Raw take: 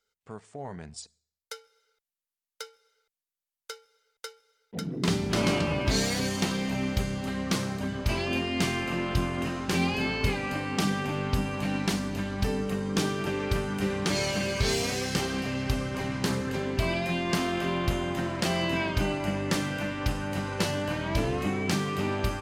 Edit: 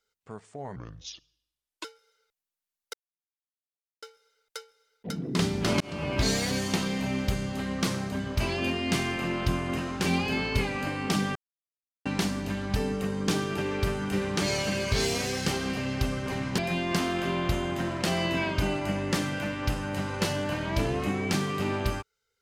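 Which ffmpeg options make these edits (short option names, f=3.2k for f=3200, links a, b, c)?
-filter_complex "[0:a]asplit=9[a][b][c][d][e][f][g][h][i];[a]atrim=end=0.764[j];[b]atrim=start=0.76:end=1.53,asetpts=PTS-STARTPTS,asetrate=31311,aresample=44100[k];[c]atrim=start=1.526:end=2.62,asetpts=PTS-STARTPTS,afade=t=out:st=1.09:d=0.004:c=hsin[l];[d]atrim=start=2.62:end=3.71,asetpts=PTS-STARTPTS,volume=0[m];[e]atrim=start=3.71:end=5.49,asetpts=PTS-STARTPTS,afade=t=in:d=0.004:c=hsin,afade=t=out:st=1.776:d=0.004:c=hsin[n];[f]atrim=start=5.49:end=11.04,asetpts=PTS-STARTPTS,afade=t=in:d=0.35,afade=t=out:st=5.546:d=0.004:c=hsin[o];[g]atrim=start=11.04:end=11.74,asetpts=PTS-STARTPTS,volume=0[p];[h]atrim=start=11.74:end=16.272,asetpts=PTS-STARTPTS,afade=t=in:d=0.004:c=hsin[q];[i]atrim=start=16.968[r];[j][k]acrossfade=d=0.004:c1=hsin:c2=hsin[s];[l][m][n][o][p][q]concat=n=6:v=0:a=1[t];[s][t]acrossfade=d=0.004:c1=hsin:c2=hsin[u];[u][r]acrossfade=d=0.004:c1=hsin:c2=hsin"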